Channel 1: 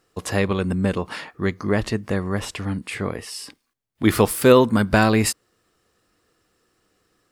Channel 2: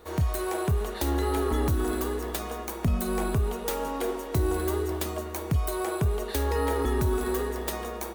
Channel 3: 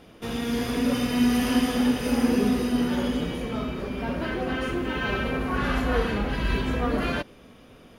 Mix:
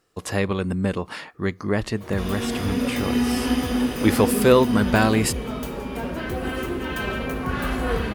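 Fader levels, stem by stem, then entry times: -2.0, -7.0, -0.5 dB; 0.00, 1.95, 1.95 s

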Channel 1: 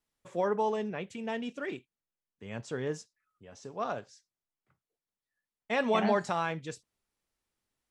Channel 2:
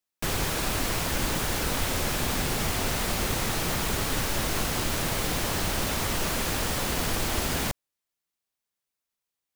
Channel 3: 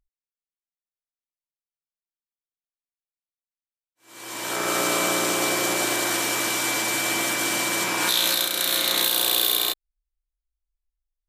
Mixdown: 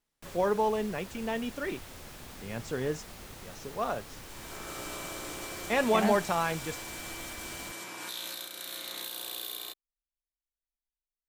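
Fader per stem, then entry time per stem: +2.0, -19.0, -17.5 dB; 0.00, 0.00, 0.00 s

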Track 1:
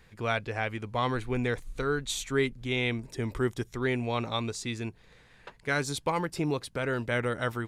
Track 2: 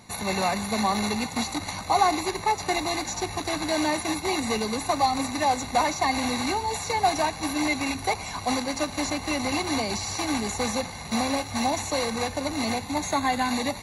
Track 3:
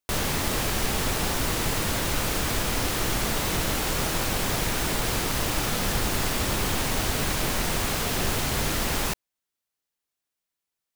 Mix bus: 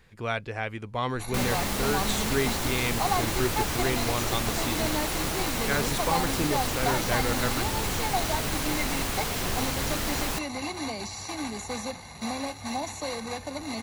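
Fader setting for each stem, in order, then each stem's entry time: -0.5, -6.5, -3.5 dB; 0.00, 1.10, 1.25 s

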